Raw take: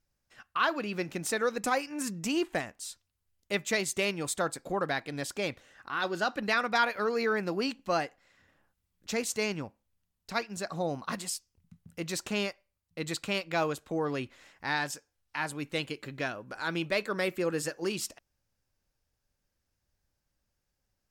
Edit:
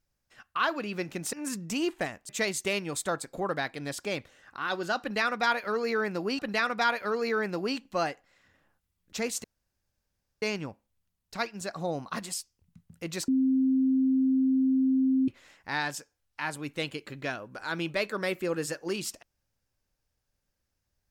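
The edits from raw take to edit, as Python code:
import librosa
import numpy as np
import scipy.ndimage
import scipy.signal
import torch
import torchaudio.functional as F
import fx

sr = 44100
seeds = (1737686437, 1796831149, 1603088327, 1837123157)

y = fx.edit(x, sr, fx.cut(start_s=1.33, length_s=0.54),
    fx.cut(start_s=2.83, length_s=0.78),
    fx.repeat(start_s=6.33, length_s=1.38, count=2),
    fx.insert_room_tone(at_s=9.38, length_s=0.98),
    fx.bleep(start_s=12.24, length_s=2.0, hz=263.0, db=-21.0), tone=tone)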